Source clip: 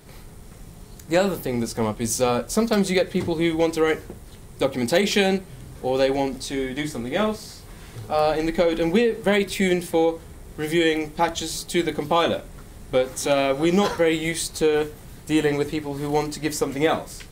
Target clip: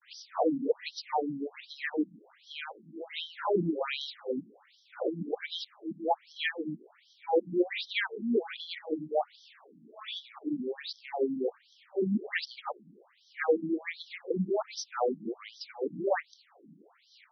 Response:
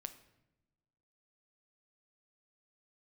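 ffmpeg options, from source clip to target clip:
-af "areverse,afftfilt=real='re*between(b*sr/1024,220*pow(4400/220,0.5+0.5*sin(2*PI*1.3*pts/sr))/1.41,220*pow(4400/220,0.5+0.5*sin(2*PI*1.3*pts/sr))*1.41)':imag='im*between(b*sr/1024,220*pow(4400/220,0.5+0.5*sin(2*PI*1.3*pts/sr))/1.41,220*pow(4400/220,0.5+0.5*sin(2*PI*1.3*pts/sr))*1.41)':win_size=1024:overlap=0.75,volume=-3dB"

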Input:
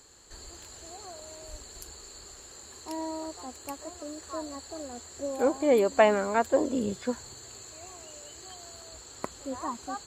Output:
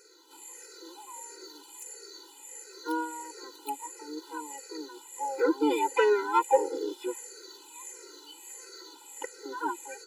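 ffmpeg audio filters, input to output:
ffmpeg -i in.wav -filter_complex "[0:a]afftfilt=real='re*pow(10,21/40*sin(2*PI*(0.56*log(max(b,1)*sr/1024/100)/log(2)-(-1.5)*(pts-256)/sr)))':imag='im*pow(10,21/40*sin(2*PI*(0.56*log(max(b,1)*sr/1024/100)/log(2)-(-1.5)*(pts-256)/sr)))':win_size=1024:overlap=0.75,asplit=2[link_01][link_02];[link_02]asetrate=66075,aresample=44100,atempo=0.66742,volume=-6dB[link_03];[link_01][link_03]amix=inputs=2:normalize=0,afftfilt=real='re*eq(mod(floor(b*sr/1024/260),2),1)':imag='im*eq(mod(floor(b*sr/1024/260),2),1)':win_size=1024:overlap=0.75,volume=-3dB" out.wav

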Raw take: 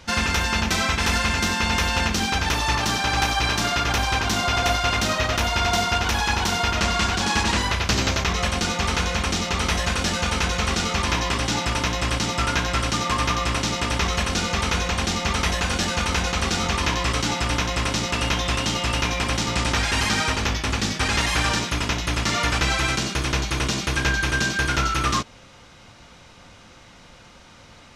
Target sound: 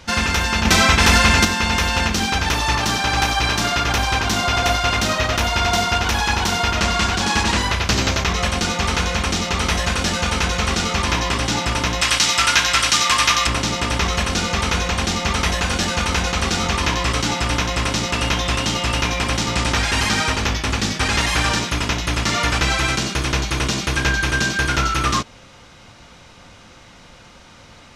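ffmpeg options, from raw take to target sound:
ffmpeg -i in.wav -filter_complex "[0:a]asettb=1/sr,asplit=3[link_01][link_02][link_03];[link_01]atrim=end=0.654[link_04];[link_02]atrim=start=0.65:end=1.45,asetpts=PTS-STARTPTS,afade=type=in:duration=0.004:curve=qsin,afade=type=out:start_time=0.796:duration=0.004:curve=qsin,acontrast=44[link_05];[link_03]atrim=start=1.446[link_06];[link_04][link_05]acrossfade=duration=0.004:curve1=hsin:curve2=qsin[link_07];[link_07][link_06]acrossfade=duration=0.004:curve1=qsin:curve2=hsin,asettb=1/sr,asplit=3[link_08][link_09][link_10];[link_08]atrim=end=12.014[link_11];[link_09]atrim=start=12.01:end=13.47,asetpts=PTS-STARTPTS,afade=type=in:duration=0.004:curve=qsin,afade=type=out:start_time=1.456:duration=0.004:curve=qsin,tiltshelf=frequency=850:gain=-9[link_12];[link_10]atrim=start=13.466[link_13];[link_11][link_12]acrossfade=duration=0.004:curve1=hsin:curve2=qsin[link_14];[link_14][link_13]acrossfade=duration=0.004:curve1=qsin:curve2=hsin,volume=3dB" out.wav

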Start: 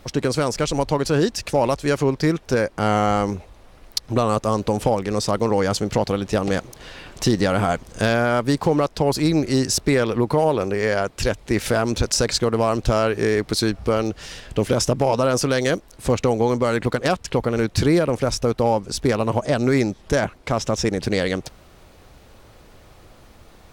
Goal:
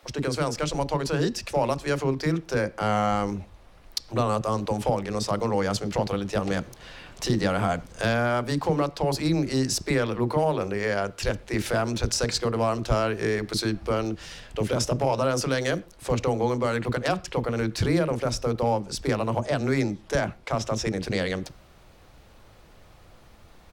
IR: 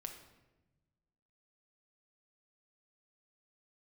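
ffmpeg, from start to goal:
-filter_complex "[0:a]acrossover=split=360[link_01][link_02];[link_01]adelay=30[link_03];[link_03][link_02]amix=inputs=2:normalize=0,asplit=2[link_04][link_05];[1:a]atrim=start_sample=2205,atrim=end_sample=6174,lowpass=6300[link_06];[link_05][link_06]afir=irnorm=-1:irlink=0,volume=-7.5dB[link_07];[link_04][link_07]amix=inputs=2:normalize=0,volume=-6dB"

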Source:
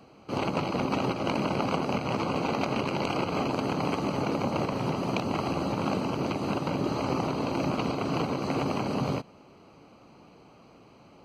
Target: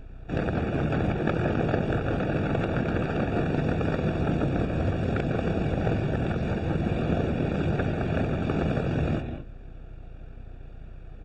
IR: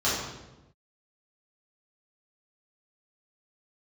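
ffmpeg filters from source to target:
-filter_complex "[0:a]asplit=2[link_01][link_02];[1:a]atrim=start_sample=2205,atrim=end_sample=3969,adelay=148[link_03];[link_02][link_03]afir=irnorm=-1:irlink=0,volume=-20dB[link_04];[link_01][link_04]amix=inputs=2:normalize=0,aeval=exprs='val(0)+0.00794*(sin(2*PI*50*n/s)+sin(2*PI*2*50*n/s)/2+sin(2*PI*3*50*n/s)/3+sin(2*PI*4*50*n/s)/4+sin(2*PI*5*50*n/s)/5)':channel_layout=same,asetrate=25476,aresample=44100,atempo=1.73107,volume=2.5dB"

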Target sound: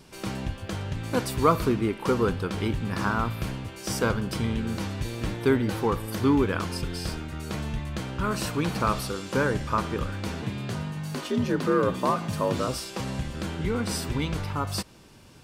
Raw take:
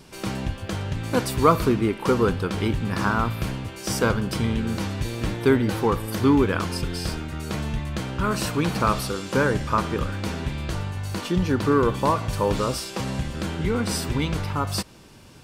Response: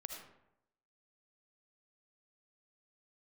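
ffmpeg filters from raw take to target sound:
-filter_complex "[0:a]asettb=1/sr,asplit=3[link_01][link_02][link_03];[link_01]atrim=end=10.424[link_04];[link_02]atrim=start=10.42:end=12.68,asetpts=PTS-STARTPTS,afade=type=in:duration=0.004:curve=qsin,afade=type=out:start_time=2.256:duration=0.004:curve=qsin,afreqshift=57[link_05];[link_03]atrim=start=12.676[link_06];[link_04][link_05]acrossfade=duration=0.004:curve1=hsin:curve2=qsin[link_07];[link_07][link_06]acrossfade=duration=0.004:curve1=qsin:curve2=hsin,volume=-3.5dB"

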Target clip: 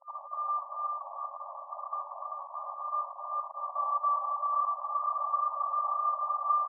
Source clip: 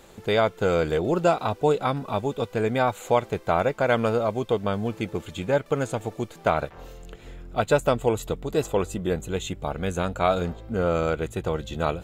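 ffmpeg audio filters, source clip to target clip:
ffmpeg -i in.wav -filter_complex "[0:a]afftfilt=real='real(if(lt(b,272),68*(eq(floor(b/68),0)*3+eq(floor(b/68),1)*0+eq(floor(b/68),2)*1+eq(floor(b/68),3)*2)+mod(b,68),b),0)':imag='imag(if(lt(b,272),68*(eq(floor(b/68),0)*3+eq(floor(b/68),1)*0+eq(floor(b/68),2)*1+eq(floor(b/68),3)*2)+mod(b,68),b),0)':win_size=2048:overlap=0.75,aemphasis=mode=reproduction:type=50fm,acontrast=26,alimiter=limit=-11dB:level=0:latency=1:release=165,acompressor=threshold=-27dB:ratio=2.5,asetrate=34006,aresample=44100,atempo=1.29684,acrusher=bits=5:mix=0:aa=0.000001,atempo=1.8,asplit=2[link_01][link_02];[link_02]aecho=0:1:390:0.668[link_03];[link_01][link_03]amix=inputs=2:normalize=0,afftfilt=real='re*between(b*sr/4096,540,1200)':imag='im*between(b*sr/4096,540,1200)':win_size=4096:overlap=0.75,volume=8.5dB" out.wav

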